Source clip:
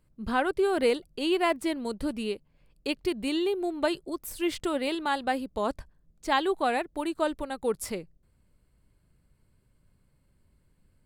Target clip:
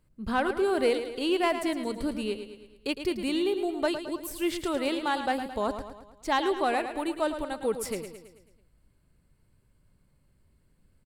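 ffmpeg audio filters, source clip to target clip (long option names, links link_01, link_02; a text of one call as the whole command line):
ffmpeg -i in.wav -af "asoftclip=type=tanh:threshold=-14dB,aecho=1:1:109|218|327|436|545|654:0.335|0.174|0.0906|0.0471|0.0245|0.0127" out.wav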